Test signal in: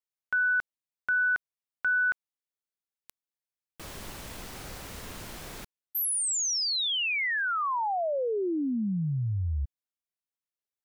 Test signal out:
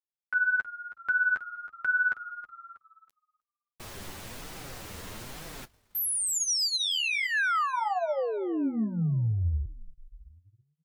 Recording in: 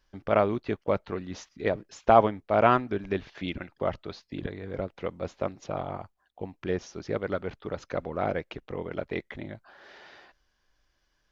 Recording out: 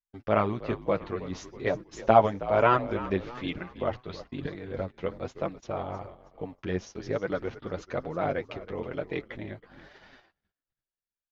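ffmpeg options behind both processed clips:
ffmpeg -i in.wav -filter_complex "[0:a]flanger=delay=5.8:depth=5.3:regen=13:speed=1.1:shape=triangular,asplit=6[link_01][link_02][link_03][link_04][link_05][link_06];[link_02]adelay=320,afreqshift=-59,volume=-15dB[link_07];[link_03]adelay=640,afreqshift=-118,volume=-21.2dB[link_08];[link_04]adelay=960,afreqshift=-177,volume=-27.4dB[link_09];[link_05]adelay=1280,afreqshift=-236,volume=-33.6dB[link_10];[link_06]adelay=1600,afreqshift=-295,volume=-39.8dB[link_11];[link_01][link_07][link_08][link_09][link_10][link_11]amix=inputs=6:normalize=0,agate=range=-33dB:threshold=-51dB:ratio=3:release=57:detection=peak,volume=3dB" out.wav

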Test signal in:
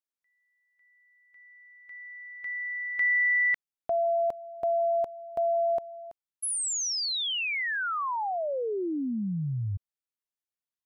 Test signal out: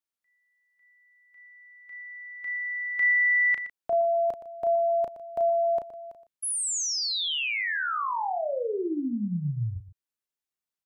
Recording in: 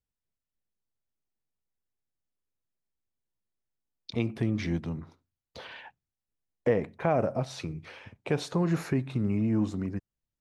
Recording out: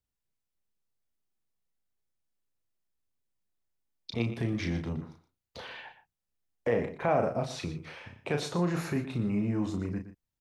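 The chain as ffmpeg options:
ffmpeg -i in.wav -filter_complex "[0:a]acrossover=split=520|3500[link_01][link_02][link_03];[link_01]alimiter=level_in=0.5dB:limit=-24dB:level=0:latency=1,volume=-0.5dB[link_04];[link_04][link_02][link_03]amix=inputs=3:normalize=0,asplit=2[link_05][link_06];[link_06]adelay=34,volume=-6dB[link_07];[link_05][link_07]amix=inputs=2:normalize=0,aecho=1:1:119:0.224" out.wav

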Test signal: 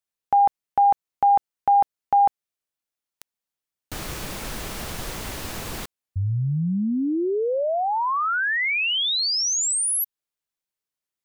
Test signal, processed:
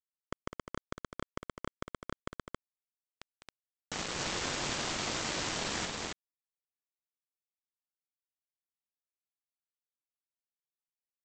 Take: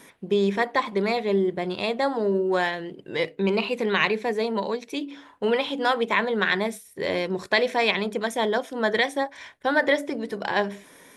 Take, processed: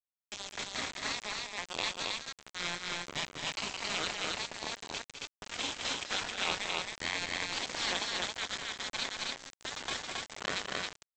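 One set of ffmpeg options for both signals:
ffmpeg -i in.wav -filter_complex "[0:a]afftfilt=real='re*lt(hypot(re,im),0.112)':imag='im*lt(hypot(re,im),0.112)':win_size=1024:overlap=0.75,asplit=2[link_01][link_02];[link_02]adelay=22,volume=-12.5dB[link_03];[link_01][link_03]amix=inputs=2:normalize=0,aresample=16000,aeval=exprs='val(0)*gte(abs(val(0)),0.0266)':channel_layout=same,aresample=44100,aecho=1:1:204.1|271.1:0.398|0.794,acompressor=mode=upward:threshold=-48dB:ratio=2.5:attack=1.3:release=23:knee=2.83:detection=peak" out.wav

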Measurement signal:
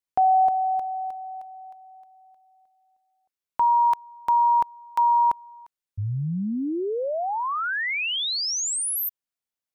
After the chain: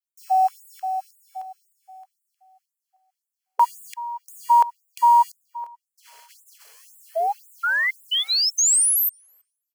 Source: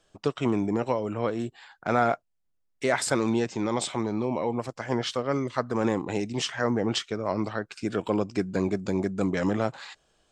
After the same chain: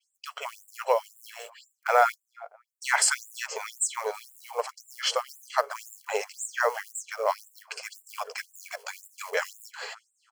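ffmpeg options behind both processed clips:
ffmpeg -i in.wav -filter_complex "[0:a]bandreject=frequency=50:width_type=h:width=6,bandreject=frequency=100:width_type=h:width=6,bandreject=frequency=150:width_type=h:width=6,bandreject=frequency=200:width_type=h:width=6,bandreject=frequency=250:width_type=h:width=6,adynamicequalizer=threshold=0.00447:dfrequency=7800:dqfactor=1.2:tfrequency=7800:tqfactor=1.2:attack=5:release=100:ratio=0.375:range=2:mode=boostabove:tftype=bell,acrusher=bits=7:mode=log:mix=0:aa=0.000001,dynaudnorm=framelen=270:gausssize=5:maxgain=5.5dB,asuperstop=centerf=3700:order=8:qfactor=7.7,asplit=2[link_01][link_02];[link_02]adelay=326,lowpass=frequency=1100:poles=1,volume=-17dB,asplit=2[link_03][link_04];[link_04]adelay=326,lowpass=frequency=1100:poles=1,volume=0.37,asplit=2[link_05][link_06];[link_06]adelay=326,lowpass=frequency=1100:poles=1,volume=0.37[link_07];[link_03][link_05][link_07]amix=inputs=3:normalize=0[link_08];[link_01][link_08]amix=inputs=2:normalize=0,afftfilt=real='re*gte(b*sr/1024,390*pow(7200/390,0.5+0.5*sin(2*PI*1.9*pts/sr)))':imag='im*gte(b*sr/1024,390*pow(7200/390,0.5+0.5*sin(2*PI*1.9*pts/sr)))':win_size=1024:overlap=0.75" out.wav

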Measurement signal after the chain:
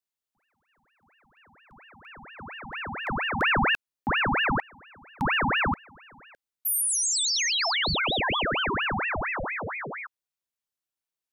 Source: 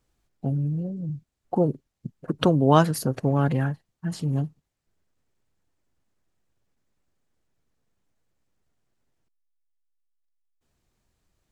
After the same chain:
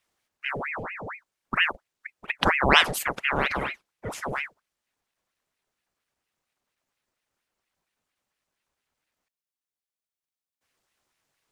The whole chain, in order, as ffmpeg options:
ffmpeg -i in.wav -af "highpass=frequency=380:poles=1,aeval=exprs='val(0)*sin(2*PI*1300*n/s+1300*0.8/4.3*sin(2*PI*4.3*n/s))':channel_layout=same,volume=4.5dB" out.wav

